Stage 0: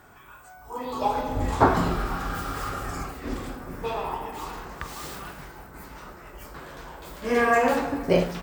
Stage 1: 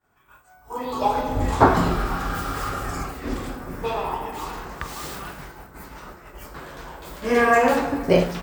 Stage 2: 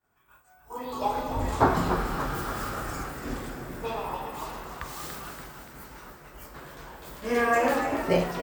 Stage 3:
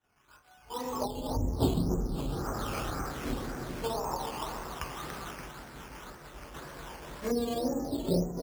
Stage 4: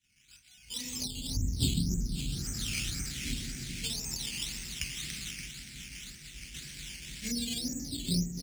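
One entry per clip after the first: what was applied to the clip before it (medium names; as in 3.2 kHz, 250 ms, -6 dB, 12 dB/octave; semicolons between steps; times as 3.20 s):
expander -40 dBFS; trim +3.5 dB
treble shelf 7.9 kHz +5 dB; frequency-shifting echo 287 ms, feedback 58%, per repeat +92 Hz, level -9 dB; trim -6.5 dB
low-pass that closes with the level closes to 350 Hz, closed at -25 dBFS; decimation with a swept rate 9×, swing 60% 1.9 Hz
FFT filter 210 Hz 0 dB, 540 Hz -24 dB, 1.1 kHz -27 dB, 2.2 kHz +7 dB, 8.5 kHz +11 dB, 13 kHz +1 dB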